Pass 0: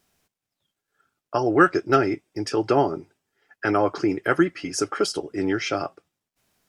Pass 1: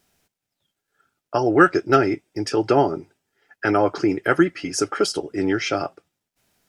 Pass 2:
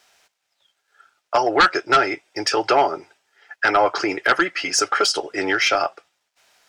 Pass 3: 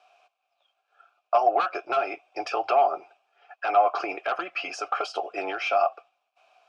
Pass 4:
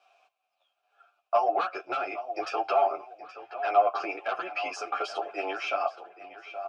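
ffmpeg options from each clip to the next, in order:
-af "bandreject=f=1.1k:w=11,volume=2.5dB"
-filter_complex "[0:a]acrossover=split=550 7600:gain=0.0794 1 0.224[a][b][c];[a][b][c]amix=inputs=3:normalize=0,asplit=2[d][e];[e]acompressor=threshold=-31dB:ratio=6,volume=1dB[f];[d][f]amix=inputs=2:normalize=0,aeval=exprs='0.631*sin(PI/2*2*val(0)/0.631)':c=same,volume=-4.5dB"
-filter_complex "[0:a]apsyclip=13dB,acompressor=threshold=-8dB:ratio=6,asplit=3[a][b][c];[a]bandpass=f=730:t=q:w=8,volume=0dB[d];[b]bandpass=f=1.09k:t=q:w=8,volume=-6dB[e];[c]bandpass=f=2.44k:t=q:w=8,volume=-9dB[f];[d][e][f]amix=inputs=3:normalize=0,volume=-3dB"
-filter_complex "[0:a]asplit=2[a][b];[b]adelay=824,lowpass=f=4.3k:p=1,volume=-13dB,asplit=2[c][d];[d]adelay=824,lowpass=f=4.3k:p=1,volume=0.38,asplit=2[e][f];[f]adelay=824,lowpass=f=4.3k:p=1,volume=0.38,asplit=2[g][h];[h]adelay=824,lowpass=f=4.3k:p=1,volume=0.38[i];[a][c][e][g][i]amix=inputs=5:normalize=0,asplit=2[j][k];[k]adelay=9.8,afreqshift=-0.75[l];[j][l]amix=inputs=2:normalize=1"

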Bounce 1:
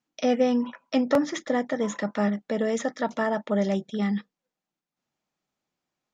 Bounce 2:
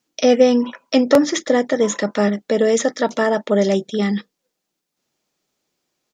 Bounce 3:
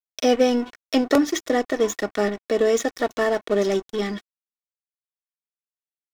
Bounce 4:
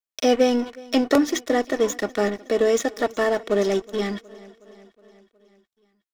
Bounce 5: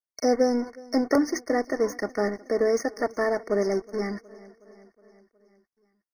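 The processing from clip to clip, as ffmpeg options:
-af "firequalizer=gain_entry='entry(200,0);entry(400,7);entry(770,0);entry(4600,8)':delay=0.05:min_phase=1,volume=5.5dB"
-af "aeval=exprs='sgn(val(0))*max(abs(val(0))-0.0316,0)':c=same,aecho=1:1:2.7:0.45,volume=-3dB"
-af "aecho=1:1:367|734|1101|1468|1835:0.0794|0.0477|0.0286|0.0172|0.0103"
-af "afftfilt=real='re*eq(mod(floor(b*sr/1024/2200),2),0)':imag='im*eq(mod(floor(b*sr/1024/2200),2),0)':win_size=1024:overlap=0.75,volume=-3.5dB"

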